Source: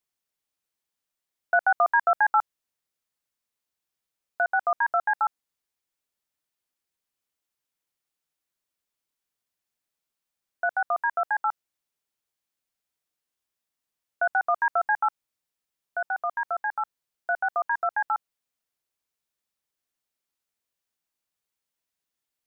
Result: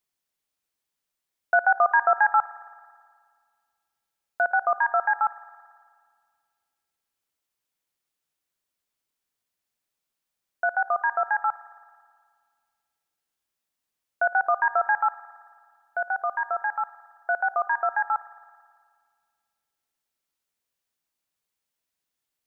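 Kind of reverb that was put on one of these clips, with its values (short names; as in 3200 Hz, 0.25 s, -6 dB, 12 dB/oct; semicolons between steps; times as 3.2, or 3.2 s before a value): spring tank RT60 1.9 s, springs 54 ms, chirp 35 ms, DRR 15 dB; gain +1.5 dB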